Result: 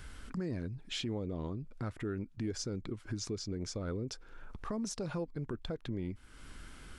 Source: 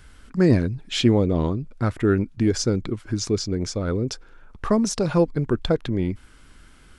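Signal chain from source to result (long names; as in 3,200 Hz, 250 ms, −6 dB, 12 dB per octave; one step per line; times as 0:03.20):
downward compressor 2.5 to 1, threshold −41 dBFS, peak gain reduction 19 dB
brickwall limiter −28.5 dBFS, peak gain reduction 8 dB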